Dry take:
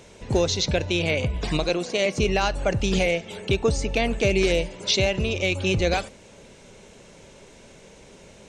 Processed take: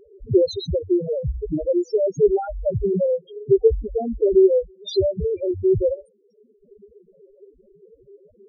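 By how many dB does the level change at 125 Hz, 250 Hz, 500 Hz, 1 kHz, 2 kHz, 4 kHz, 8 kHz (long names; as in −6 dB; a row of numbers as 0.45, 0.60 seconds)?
−3.0 dB, +2.5 dB, +6.0 dB, −6.5 dB, below −30 dB, −12.0 dB, below −15 dB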